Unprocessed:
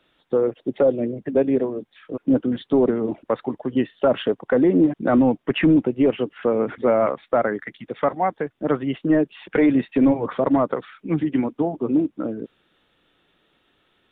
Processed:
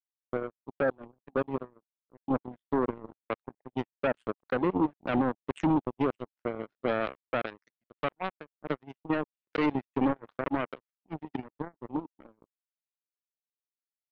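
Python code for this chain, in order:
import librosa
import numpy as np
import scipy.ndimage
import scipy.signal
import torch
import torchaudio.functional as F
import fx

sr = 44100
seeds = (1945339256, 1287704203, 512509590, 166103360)

y = fx.power_curve(x, sr, exponent=3.0)
y = y * librosa.db_to_amplitude(-6.5)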